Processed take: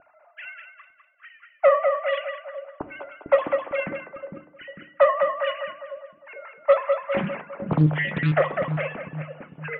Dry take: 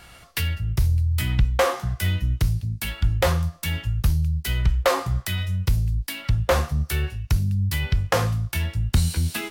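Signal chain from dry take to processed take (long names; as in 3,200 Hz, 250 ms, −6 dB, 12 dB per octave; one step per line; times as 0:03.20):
three sine waves on the formant tracks
pitch vibrato 4.5 Hz 14 cents
low-pass filter 2,900 Hz 24 dB per octave
reversed playback
upward compression, threshold −37 dBFS
reversed playback
speed change −3%
on a send: echo with a time of its own for lows and highs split 440 Hz, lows 451 ms, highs 202 ms, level −5 dB
on the sum: feedback delay network reverb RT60 0.49 s, low-frequency decay 1.4×, high-frequency decay 0.75×, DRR 10.5 dB
low-pass that shuts in the quiet parts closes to 670 Hz, open at −11.5 dBFS
highs frequency-modulated by the lows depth 0.84 ms
level −5.5 dB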